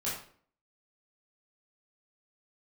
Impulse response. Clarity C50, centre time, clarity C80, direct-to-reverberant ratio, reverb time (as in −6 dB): 3.0 dB, 44 ms, 8.0 dB, −9.0 dB, 0.50 s